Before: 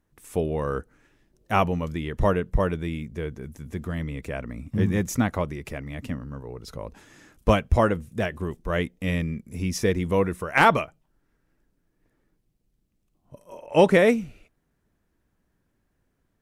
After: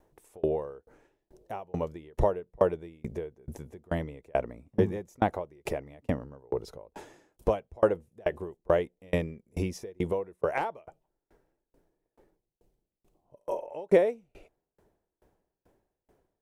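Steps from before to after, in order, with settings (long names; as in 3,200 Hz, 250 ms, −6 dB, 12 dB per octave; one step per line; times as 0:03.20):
flat-topped bell 570 Hz +11.5 dB
downward compressor 2 to 1, threshold −31 dBFS, peak gain reduction 16.5 dB
tremolo with a ramp in dB decaying 2.3 Hz, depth 34 dB
level +6 dB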